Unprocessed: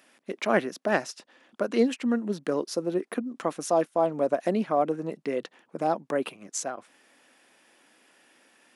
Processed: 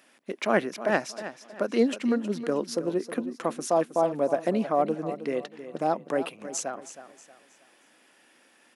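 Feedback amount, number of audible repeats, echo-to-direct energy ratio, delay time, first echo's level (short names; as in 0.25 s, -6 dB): 35%, 3, -12.0 dB, 0.317 s, -12.5 dB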